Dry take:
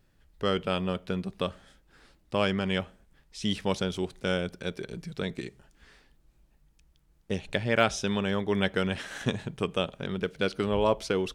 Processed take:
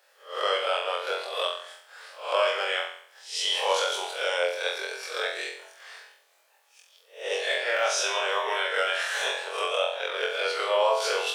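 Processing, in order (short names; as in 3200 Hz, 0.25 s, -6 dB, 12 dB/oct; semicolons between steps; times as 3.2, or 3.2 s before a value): spectral swells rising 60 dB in 0.39 s; steep high-pass 490 Hz 48 dB/oct; in parallel at +2.5 dB: compressor, threshold -41 dBFS, peak gain reduction 21 dB; on the sum: limiter -18 dBFS, peak gain reduction 10 dB; flutter echo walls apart 3.9 m, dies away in 0.56 s; gain +1 dB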